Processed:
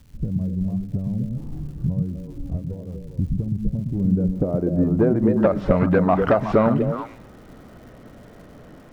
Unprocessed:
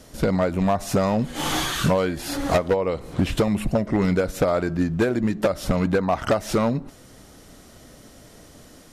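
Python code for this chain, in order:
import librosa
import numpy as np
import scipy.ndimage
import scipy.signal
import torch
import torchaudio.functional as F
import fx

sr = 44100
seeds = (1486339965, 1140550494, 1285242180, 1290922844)

y = fx.filter_sweep_lowpass(x, sr, from_hz=130.0, to_hz=1800.0, start_s=3.78, end_s=5.65, q=0.81)
y = fx.echo_stepped(y, sr, ms=123, hz=160.0, octaves=1.4, feedback_pct=70, wet_db=0)
y = fx.dmg_crackle(y, sr, seeds[0], per_s=310.0, level_db=-48.0)
y = y * librosa.db_to_amplitude(2.5)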